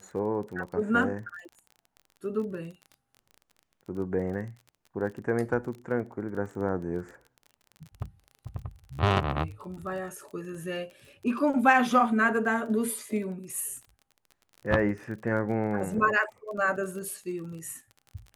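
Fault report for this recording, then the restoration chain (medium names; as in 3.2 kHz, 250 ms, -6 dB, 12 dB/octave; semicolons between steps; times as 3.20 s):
crackle 27 per s -38 dBFS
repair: de-click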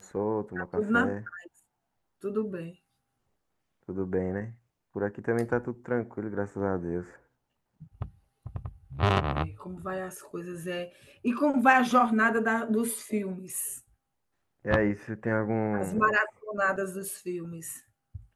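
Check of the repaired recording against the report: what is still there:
nothing left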